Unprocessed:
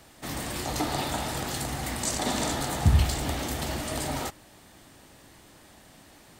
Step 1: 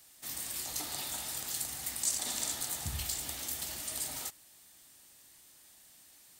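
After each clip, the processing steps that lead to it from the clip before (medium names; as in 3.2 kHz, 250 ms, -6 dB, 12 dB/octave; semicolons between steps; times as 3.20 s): pre-emphasis filter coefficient 0.9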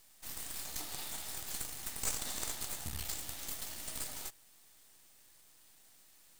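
half-wave rectifier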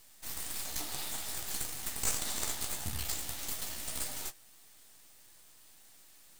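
flange 1.7 Hz, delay 8.1 ms, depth 9.9 ms, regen -33%; trim +7.5 dB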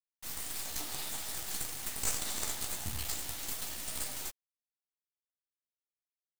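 bit crusher 7-bit; trim -1 dB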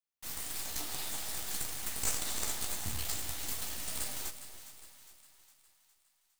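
two-band feedback delay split 830 Hz, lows 284 ms, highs 409 ms, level -12 dB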